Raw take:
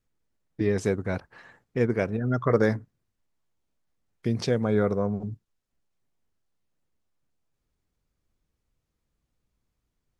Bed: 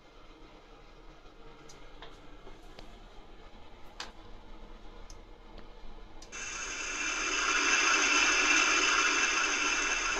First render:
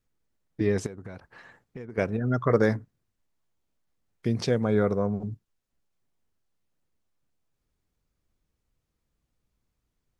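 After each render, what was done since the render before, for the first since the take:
0:00.86–0:01.98: downward compressor 8 to 1, threshold −36 dBFS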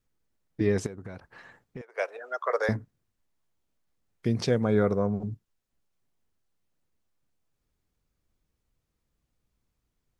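0:01.81–0:02.69: Butterworth high-pass 520 Hz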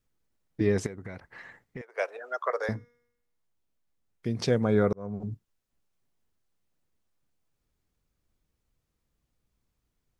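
0:00.83–0:01.84: parametric band 2,000 Hz +11 dB 0.26 octaves
0:02.50–0:04.42: tuned comb filter 240 Hz, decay 0.88 s, mix 40%
0:04.93–0:05.33: fade in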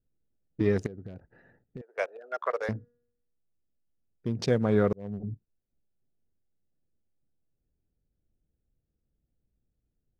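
adaptive Wiener filter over 41 samples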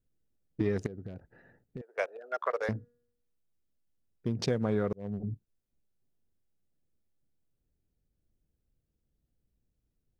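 downward compressor 5 to 1, threshold −25 dBFS, peak gain reduction 7 dB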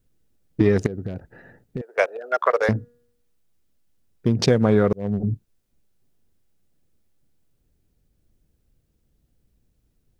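level +12 dB

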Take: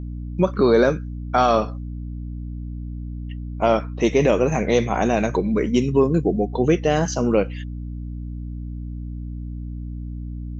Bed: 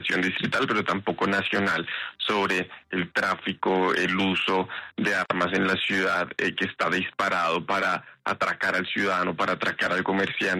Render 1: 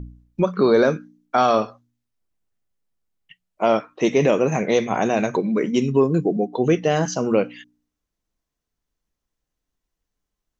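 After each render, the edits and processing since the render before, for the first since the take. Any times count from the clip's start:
hum removal 60 Hz, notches 5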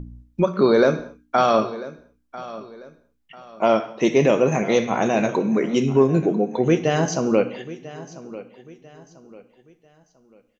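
repeating echo 994 ms, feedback 35%, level −17 dB
reverb whose tail is shaped and stops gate 260 ms falling, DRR 10 dB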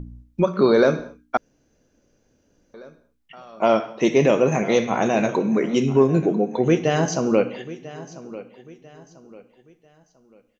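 0:01.37–0:02.74: fill with room tone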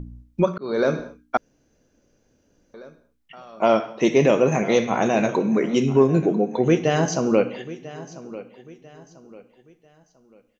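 0:00.58–0:00.99: fade in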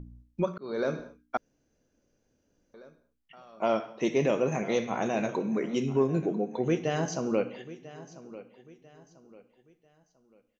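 level −9 dB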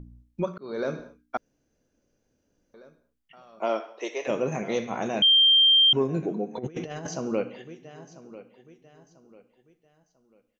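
0:03.59–0:04.27: high-pass filter 220 Hz → 550 Hz 24 dB per octave
0:05.22–0:05.93: beep over 3,170 Hz −14.5 dBFS
0:06.56–0:07.07: compressor whose output falls as the input rises −33 dBFS, ratio −0.5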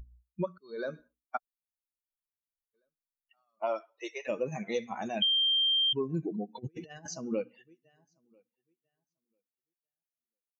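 spectral dynamics exaggerated over time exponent 2
downward compressor, threshold −26 dBFS, peak gain reduction 9 dB

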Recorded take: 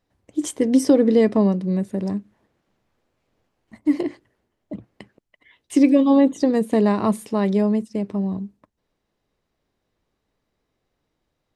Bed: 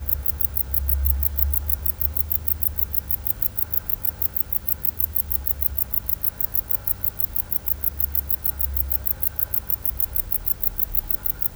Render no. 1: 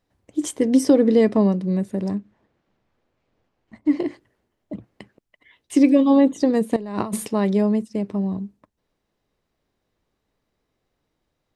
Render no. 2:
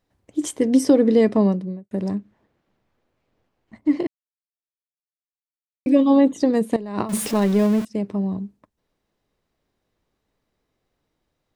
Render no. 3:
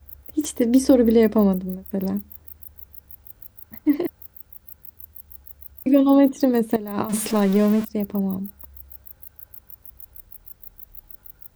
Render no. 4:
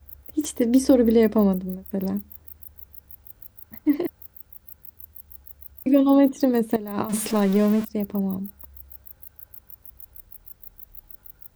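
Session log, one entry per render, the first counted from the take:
0:02.15–0:04.02: high-frequency loss of the air 81 metres; 0:06.76–0:07.28: compressor whose output falls as the input rises −28 dBFS
0:01.47–0:01.91: fade out and dull; 0:04.07–0:05.86: silence; 0:07.09–0:07.85: converter with a step at zero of −26.5 dBFS
mix in bed −19 dB
level −1.5 dB

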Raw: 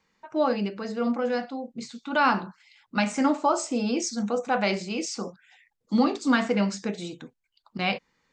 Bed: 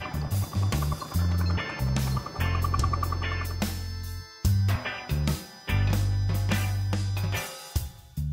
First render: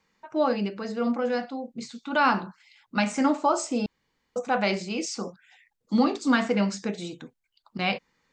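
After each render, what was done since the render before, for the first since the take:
0:03.86–0:04.36: fill with room tone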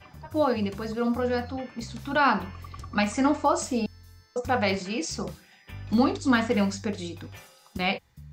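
mix in bed −15.5 dB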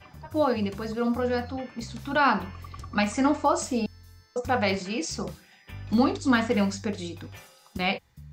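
no processing that can be heard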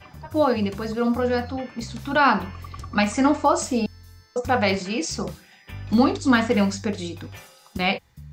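level +4 dB

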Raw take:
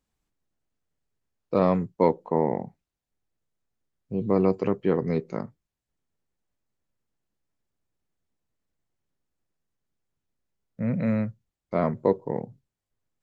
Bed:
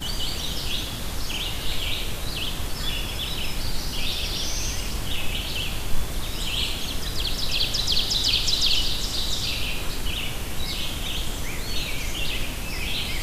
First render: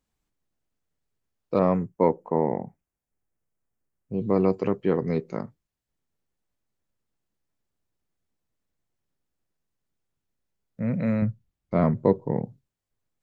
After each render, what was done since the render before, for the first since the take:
0:01.59–0:04.14: parametric band 3,900 Hz −15 dB 0.71 octaves
0:11.22–0:12.46: bass and treble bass +8 dB, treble −3 dB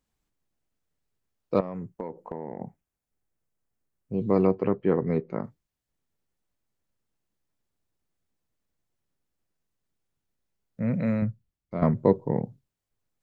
0:01.60–0:02.61: downward compressor 12 to 1, threshold −30 dBFS
0:04.47–0:05.44: low-pass filter 2,200 Hz
0:10.93–0:11.82: fade out, to −9.5 dB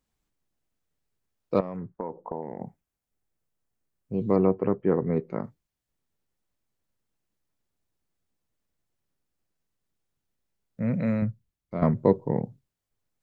0:01.76–0:02.41: low-pass with resonance 1,700 Hz → 830 Hz, resonance Q 1.7
0:04.36–0:05.17: low-pass filter 1,900 Hz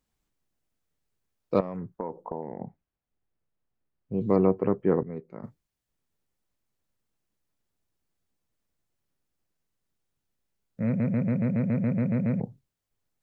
0:02.30–0:04.21: high-frequency loss of the air 270 metres
0:05.03–0:05.43: clip gain −11 dB
0:10.86: stutter in place 0.14 s, 11 plays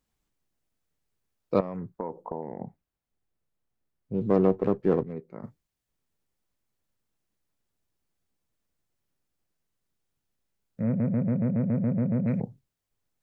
0:04.14–0:05.13: windowed peak hold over 5 samples
0:10.81–0:12.26: low-pass filter 1,400 Hz → 1,200 Hz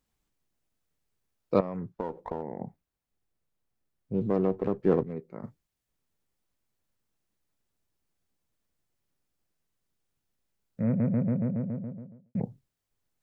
0:01.87–0:02.43: windowed peak hold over 5 samples
0:04.22–0:04.78: downward compressor 1.5 to 1, threshold −28 dBFS
0:10.99–0:12.35: fade out and dull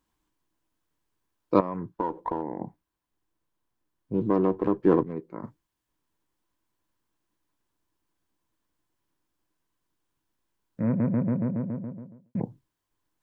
thirty-one-band graphic EQ 315 Hz +11 dB, 1,000 Hz +12 dB, 1,600 Hz +5 dB, 3,150 Hz +3 dB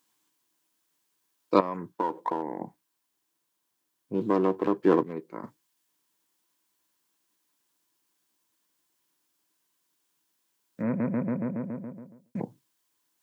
Bessel high-pass filter 220 Hz, order 2
high-shelf EQ 2,500 Hz +12 dB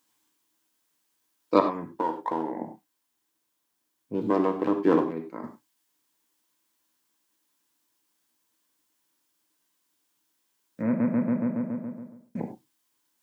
reverb whose tail is shaped and stops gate 120 ms flat, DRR 5 dB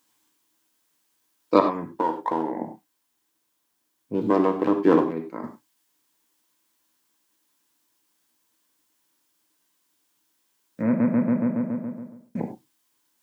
level +3.5 dB
brickwall limiter −3 dBFS, peak gain reduction 1.5 dB

